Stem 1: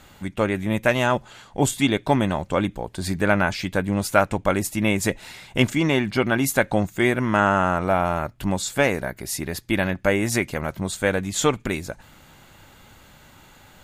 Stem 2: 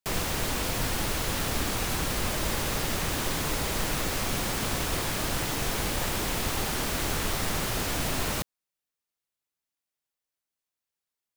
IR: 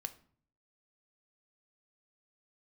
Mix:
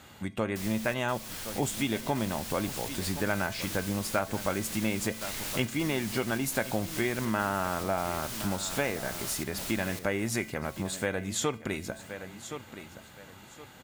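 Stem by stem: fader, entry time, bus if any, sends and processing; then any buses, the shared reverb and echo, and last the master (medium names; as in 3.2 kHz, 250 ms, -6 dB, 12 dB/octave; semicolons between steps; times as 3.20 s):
+2.5 dB, 0.00 s, send -4.5 dB, echo send -14 dB, high-pass 71 Hz; feedback comb 220 Hz, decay 0.46 s, harmonics odd, mix 60%
-11.0 dB, 0.50 s, no send, echo send -3 dB, treble shelf 2.2 kHz +12 dB; trance gate "xxx.xxxxx.xxx.x" 103 bpm -12 dB; auto duck -6 dB, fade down 1.45 s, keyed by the first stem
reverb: on, RT60 0.50 s, pre-delay 3 ms
echo: feedback delay 1069 ms, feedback 27%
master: compression 2:1, threshold -32 dBFS, peak gain reduction 10.5 dB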